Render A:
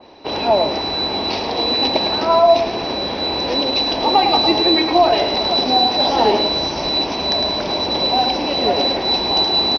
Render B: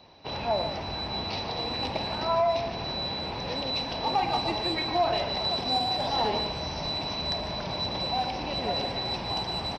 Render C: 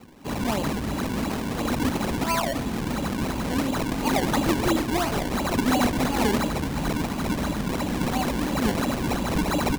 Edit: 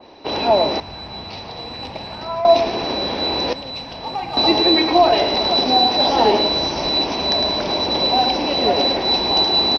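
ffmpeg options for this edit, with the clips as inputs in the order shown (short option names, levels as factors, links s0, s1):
-filter_complex "[1:a]asplit=2[s0][s1];[0:a]asplit=3[s2][s3][s4];[s2]atrim=end=0.802[s5];[s0]atrim=start=0.798:end=2.452[s6];[s3]atrim=start=2.448:end=3.532[s7];[s1]atrim=start=3.528:end=4.372[s8];[s4]atrim=start=4.368[s9];[s5][s6]acrossfade=d=0.004:c1=hsin:c2=hsin[s10];[s10][s7]acrossfade=d=0.004:c1=hsin:c2=hsin[s11];[s11][s8]acrossfade=d=0.004:c1=hsin:c2=hsin[s12];[s12][s9]acrossfade=d=0.004:c1=hsin:c2=hsin"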